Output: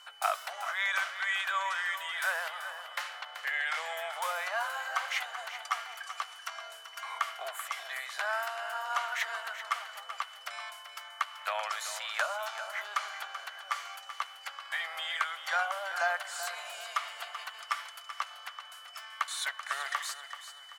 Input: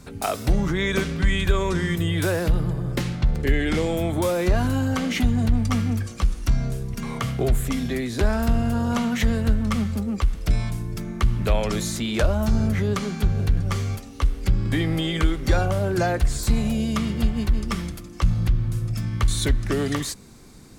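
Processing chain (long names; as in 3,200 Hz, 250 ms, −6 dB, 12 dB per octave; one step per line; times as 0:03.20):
Butterworth high-pass 650 Hz 48 dB per octave
parametric band 1,400 Hz +10.5 dB 1.4 octaves
steady tone 3,000 Hz −44 dBFS
repeating echo 384 ms, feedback 37%, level −11 dB
level −9 dB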